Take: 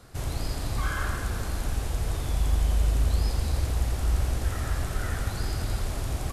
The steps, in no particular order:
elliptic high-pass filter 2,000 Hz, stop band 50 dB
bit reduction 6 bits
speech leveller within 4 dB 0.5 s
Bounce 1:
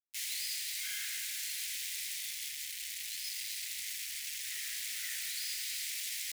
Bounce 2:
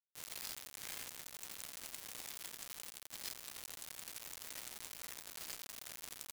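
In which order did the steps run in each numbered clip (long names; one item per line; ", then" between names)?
speech leveller, then bit reduction, then elliptic high-pass filter
elliptic high-pass filter, then speech leveller, then bit reduction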